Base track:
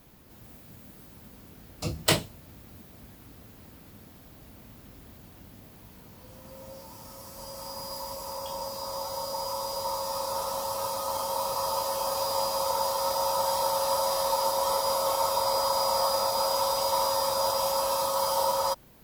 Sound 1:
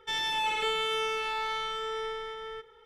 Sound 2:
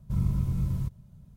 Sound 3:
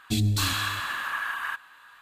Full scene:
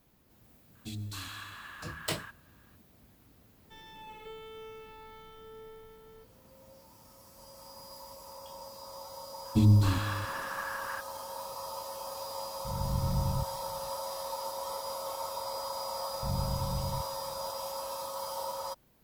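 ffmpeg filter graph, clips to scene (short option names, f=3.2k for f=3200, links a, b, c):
-filter_complex "[3:a]asplit=2[a][b];[2:a]asplit=2[c][d];[0:a]volume=-11dB[e];[1:a]tiltshelf=f=640:g=8.5[f];[b]tiltshelf=f=1.2k:g=9.5[g];[c]dynaudnorm=f=220:g=3:m=11.5dB[h];[a]atrim=end=2.01,asetpts=PTS-STARTPTS,volume=-15.5dB,afade=t=in:d=0.004:c=hsin,afade=t=out:st=2.006:d=0.004:c=hsin,adelay=750[i];[f]atrim=end=2.85,asetpts=PTS-STARTPTS,volume=-15.5dB,afade=t=in:d=0.004:c=hsin,afade=t=out:st=2.846:d=0.004:c=hsin,adelay=3630[j];[g]atrim=end=2.01,asetpts=PTS-STARTPTS,volume=-6dB,afade=t=in:d=0.004:c=hsin,afade=t=out:st=2.006:d=0.004:c=hsin,adelay=9450[k];[h]atrim=end=1.36,asetpts=PTS-STARTPTS,volume=-13.5dB,afade=t=in:d=0.004:c=hsin,afade=t=out:st=1.356:d=0.004:c=hsin,adelay=12550[l];[d]atrim=end=1.36,asetpts=PTS-STARTPTS,volume=-7dB,afade=t=in:d=0.004:c=hsin,afade=t=out:st=1.356:d=0.004:c=hsin,adelay=16130[m];[e][i][j][k][l][m]amix=inputs=6:normalize=0"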